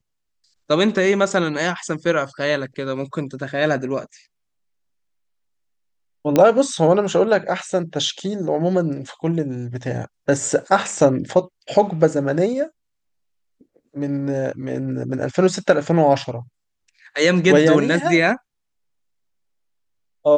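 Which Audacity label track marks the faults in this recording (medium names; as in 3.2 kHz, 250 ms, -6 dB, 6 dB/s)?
6.360000	6.360000	pop -4 dBFS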